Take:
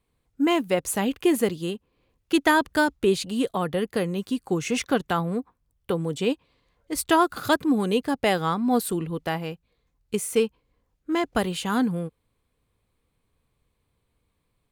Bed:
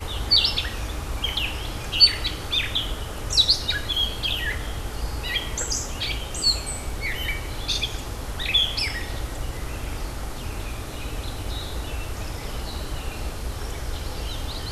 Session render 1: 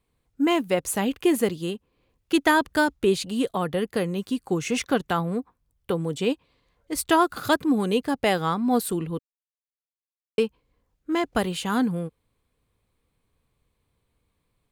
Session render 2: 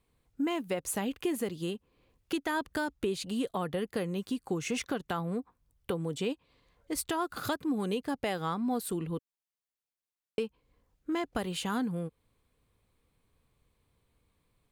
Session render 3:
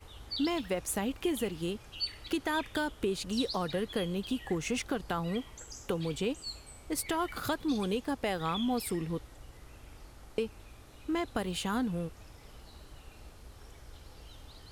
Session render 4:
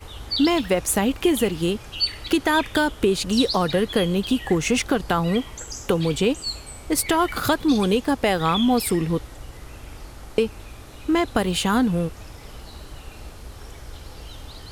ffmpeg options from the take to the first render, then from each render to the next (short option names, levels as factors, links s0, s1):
-filter_complex "[0:a]asplit=3[s0][s1][s2];[s0]atrim=end=9.19,asetpts=PTS-STARTPTS,afade=t=out:st=9.186:d=0.004:c=hsin[s3];[s1]atrim=start=9.19:end=10.38,asetpts=PTS-STARTPTS,volume=0[s4];[s2]atrim=start=10.38,asetpts=PTS-STARTPTS,afade=t=in:d=0.004:c=hsin[s5];[s3][s4][s5]concat=n=3:v=0:a=1"
-af "alimiter=limit=0.224:level=0:latency=1:release=213,acompressor=threshold=0.0178:ratio=2"
-filter_complex "[1:a]volume=0.0944[s0];[0:a][s0]amix=inputs=2:normalize=0"
-af "volume=3.98"